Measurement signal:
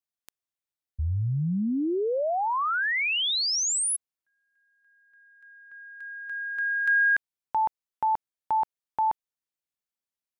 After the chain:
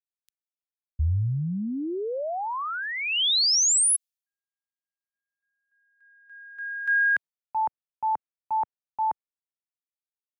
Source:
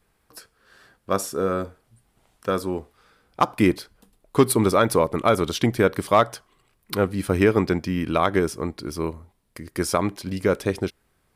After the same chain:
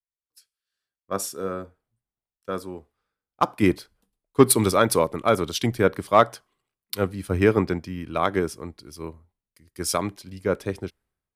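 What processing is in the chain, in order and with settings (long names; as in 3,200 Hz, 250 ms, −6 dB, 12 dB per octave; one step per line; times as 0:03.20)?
multiband upward and downward expander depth 100%
level −3.5 dB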